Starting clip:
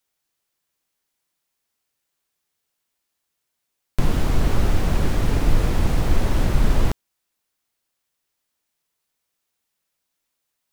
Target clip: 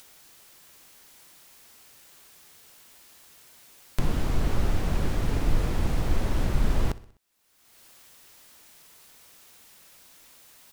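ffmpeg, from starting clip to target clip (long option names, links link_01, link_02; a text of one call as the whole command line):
ffmpeg -i in.wav -filter_complex "[0:a]acompressor=mode=upward:threshold=-23dB:ratio=2.5,asplit=2[link_01][link_02];[link_02]aecho=0:1:63|126|189|252:0.106|0.0572|0.0309|0.0167[link_03];[link_01][link_03]amix=inputs=2:normalize=0,volume=-6dB" out.wav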